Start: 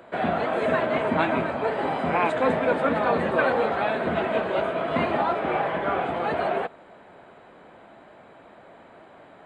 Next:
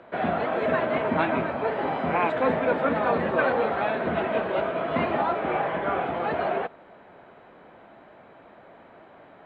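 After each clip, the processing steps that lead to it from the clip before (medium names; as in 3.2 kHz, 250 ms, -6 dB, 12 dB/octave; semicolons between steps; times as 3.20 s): low-pass 3.6 kHz 12 dB/octave; trim -1 dB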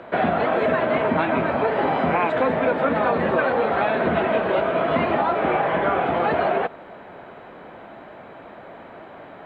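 compression, threshold -26 dBFS, peak gain reduction 8.5 dB; trim +9 dB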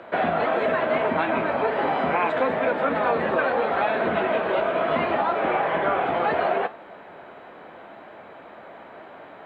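bass shelf 230 Hz -8.5 dB; flange 0.74 Hz, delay 8.7 ms, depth 6.5 ms, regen +77%; trim +3.5 dB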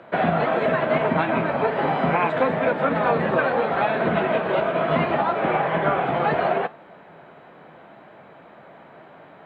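peaking EQ 150 Hz +11 dB 0.73 oct; upward expansion 1.5:1, over -31 dBFS; trim +2.5 dB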